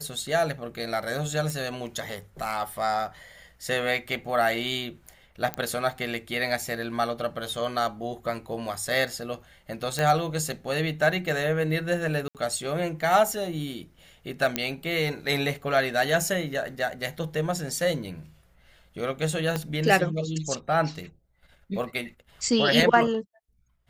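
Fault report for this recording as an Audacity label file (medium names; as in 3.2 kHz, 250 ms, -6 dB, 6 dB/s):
1.500000	1.500000	pop
5.540000	5.540000	pop -14 dBFS
9.990000	9.990000	pop -12 dBFS
12.280000	12.350000	dropout 68 ms
14.560000	14.560000	pop -8 dBFS
19.560000	19.560000	pop -13 dBFS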